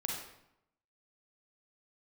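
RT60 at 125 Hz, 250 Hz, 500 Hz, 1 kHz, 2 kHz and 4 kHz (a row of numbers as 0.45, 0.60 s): 0.95, 0.90, 0.80, 0.80, 0.70, 0.60 s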